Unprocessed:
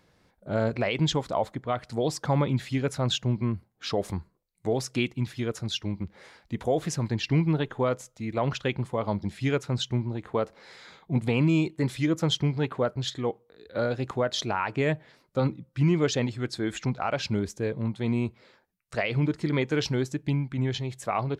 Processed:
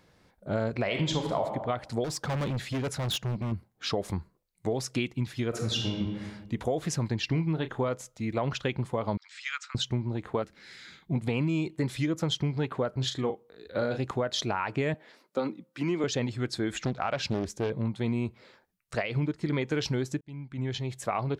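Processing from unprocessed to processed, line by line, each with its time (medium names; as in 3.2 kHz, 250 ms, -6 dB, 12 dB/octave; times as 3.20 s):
0.84–1.42 s: reverb throw, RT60 0.93 s, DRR 3 dB
2.04–3.52 s: hard clipper -29 dBFS
5.48–6.02 s: reverb throw, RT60 1.4 s, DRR 1 dB
7.29–7.88 s: doubling 31 ms -11.5 dB
9.17–9.75 s: Chebyshev band-pass 1.2–8 kHz, order 4
10.42–11.11 s: high-order bell 710 Hz -12.5 dB
12.90–13.98 s: doubling 38 ms -8.5 dB
14.94–16.04 s: high-pass 220 Hz 24 dB/octave
16.78–17.70 s: loudspeaker Doppler distortion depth 0.72 ms
19.02–19.49 s: upward expansion, over -35 dBFS
20.21–21.07 s: fade in
whole clip: compression 4:1, threshold -27 dBFS; trim +1.5 dB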